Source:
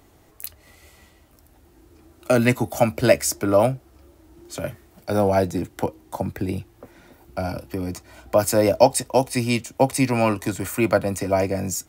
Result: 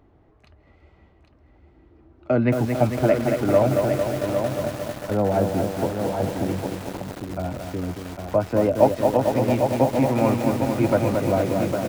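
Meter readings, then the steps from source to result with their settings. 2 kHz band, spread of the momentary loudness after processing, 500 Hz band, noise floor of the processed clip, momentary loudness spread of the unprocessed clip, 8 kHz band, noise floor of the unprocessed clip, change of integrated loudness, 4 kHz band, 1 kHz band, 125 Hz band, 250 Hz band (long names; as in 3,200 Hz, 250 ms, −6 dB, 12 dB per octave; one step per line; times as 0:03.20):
−4.5 dB, 11 LU, +0.5 dB, −56 dBFS, 17 LU, −11.5 dB, −55 dBFS, −0.5 dB, −5.5 dB, −0.5 dB, +2.0 dB, +1.5 dB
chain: head-to-tape spacing loss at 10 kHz 45 dB
single-tap delay 804 ms −6.5 dB
feedback echo at a low word length 225 ms, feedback 80%, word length 6 bits, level −4.5 dB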